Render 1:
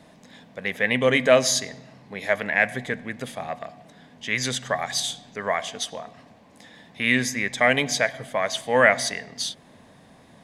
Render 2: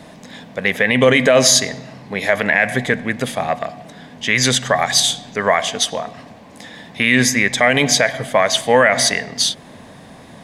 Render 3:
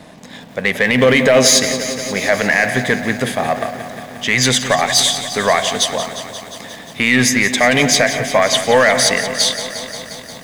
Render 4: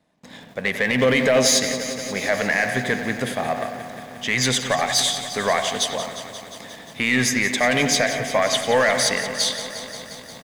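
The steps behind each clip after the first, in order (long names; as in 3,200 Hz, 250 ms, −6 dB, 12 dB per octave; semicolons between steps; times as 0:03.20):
boost into a limiter +12.5 dB; level −1 dB
leveller curve on the samples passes 1; feedback echo at a low word length 177 ms, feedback 80%, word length 6 bits, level −12 dB; level −1.5 dB
far-end echo of a speakerphone 90 ms, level −9 dB; noise gate with hold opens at −27 dBFS; level −6.5 dB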